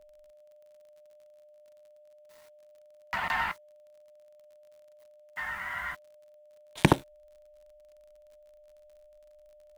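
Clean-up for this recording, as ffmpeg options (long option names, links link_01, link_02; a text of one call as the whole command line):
ffmpeg -i in.wav -af "adeclick=threshold=4,bandreject=frequency=600:width=30,agate=range=-21dB:threshold=-49dB" out.wav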